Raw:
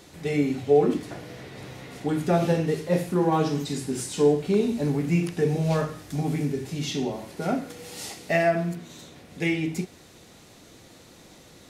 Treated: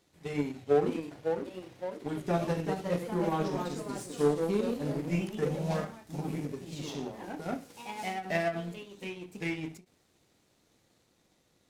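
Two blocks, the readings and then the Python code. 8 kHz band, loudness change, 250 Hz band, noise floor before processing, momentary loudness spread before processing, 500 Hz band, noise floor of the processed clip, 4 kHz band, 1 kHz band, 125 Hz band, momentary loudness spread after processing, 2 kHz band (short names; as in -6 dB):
-10.5 dB, -8.0 dB, -8.0 dB, -51 dBFS, 16 LU, -7.0 dB, -70 dBFS, -8.0 dB, -6.0 dB, -9.0 dB, 12 LU, -7.0 dB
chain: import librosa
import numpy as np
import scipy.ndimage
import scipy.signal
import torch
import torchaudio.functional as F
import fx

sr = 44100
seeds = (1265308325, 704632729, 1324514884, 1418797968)

y = fx.power_curve(x, sr, exponent=1.4)
y = fx.echo_pitch(y, sr, ms=633, semitones=2, count=3, db_per_echo=-6.0)
y = fx.end_taper(y, sr, db_per_s=230.0)
y = y * librosa.db_to_amplitude(-4.5)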